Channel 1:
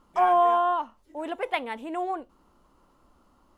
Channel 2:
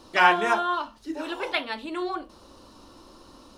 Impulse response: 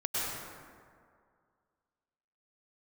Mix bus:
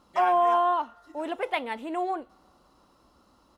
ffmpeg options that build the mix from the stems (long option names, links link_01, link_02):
-filter_complex "[0:a]highpass=46,volume=0.5dB[link_01];[1:a]highpass=250,aecho=1:1:1.5:0.55,volume=-18dB,asplit=2[link_02][link_03];[link_03]volume=-20dB[link_04];[2:a]atrim=start_sample=2205[link_05];[link_04][link_05]afir=irnorm=-1:irlink=0[link_06];[link_01][link_02][link_06]amix=inputs=3:normalize=0,alimiter=limit=-14.5dB:level=0:latency=1:release=36"